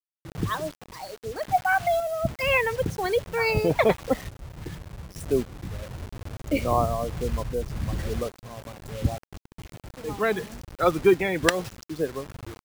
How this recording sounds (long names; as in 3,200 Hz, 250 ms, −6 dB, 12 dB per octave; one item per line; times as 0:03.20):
a quantiser's noise floor 6 bits, dither none
sample-and-hold tremolo 3.5 Hz